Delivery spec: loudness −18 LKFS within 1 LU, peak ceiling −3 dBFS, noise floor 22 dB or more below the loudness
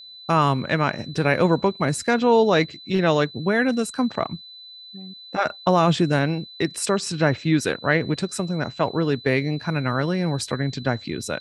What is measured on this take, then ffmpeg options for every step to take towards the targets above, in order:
interfering tone 4,000 Hz; level of the tone −40 dBFS; integrated loudness −22.5 LKFS; sample peak −5.0 dBFS; target loudness −18.0 LKFS
→ -af "bandreject=frequency=4000:width=30"
-af "volume=4.5dB,alimiter=limit=-3dB:level=0:latency=1"

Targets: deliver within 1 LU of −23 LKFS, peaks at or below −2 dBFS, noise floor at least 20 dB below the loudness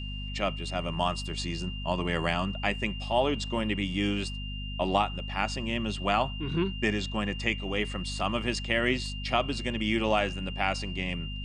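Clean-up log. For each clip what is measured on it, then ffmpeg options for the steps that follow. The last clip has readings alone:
mains hum 50 Hz; hum harmonics up to 250 Hz; level of the hum −34 dBFS; interfering tone 2,800 Hz; level of the tone −40 dBFS; integrated loudness −29.5 LKFS; sample peak −8.5 dBFS; target loudness −23.0 LKFS
→ -af "bandreject=frequency=50:width_type=h:width=4,bandreject=frequency=100:width_type=h:width=4,bandreject=frequency=150:width_type=h:width=4,bandreject=frequency=200:width_type=h:width=4,bandreject=frequency=250:width_type=h:width=4"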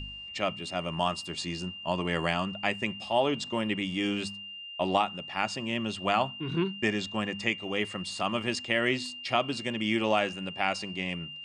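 mains hum none found; interfering tone 2,800 Hz; level of the tone −40 dBFS
→ -af "bandreject=frequency=2800:width=30"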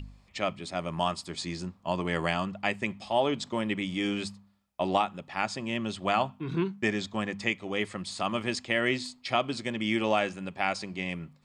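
interfering tone none found; integrated loudness −30.5 LKFS; sample peak −10.0 dBFS; target loudness −23.0 LKFS
→ -af "volume=7.5dB"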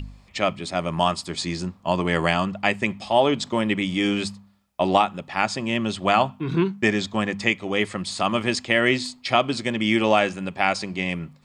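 integrated loudness −23.0 LKFS; sample peak −2.5 dBFS; background noise floor −54 dBFS

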